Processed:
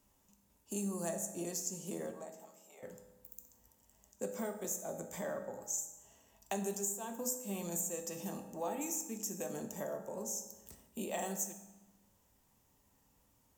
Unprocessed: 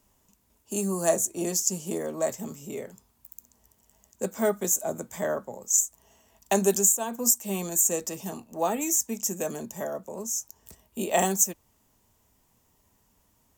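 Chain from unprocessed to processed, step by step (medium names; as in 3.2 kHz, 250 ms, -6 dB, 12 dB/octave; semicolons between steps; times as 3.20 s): compression 3:1, threshold -33 dBFS, peak gain reduction 12.5 dB; 2.11–2.83 s: ladder high-pass 630 Hz, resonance 50%; on a send: reverberation RT60 1.1 s, pre-delay 3 ms, DRR 5 dB; on the sum: trim -6 dB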